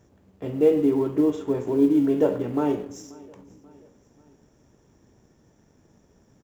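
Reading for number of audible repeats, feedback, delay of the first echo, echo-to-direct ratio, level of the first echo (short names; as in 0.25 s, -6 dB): 2, 48%, 0.535 s, -22.0 dB, -23.0 dB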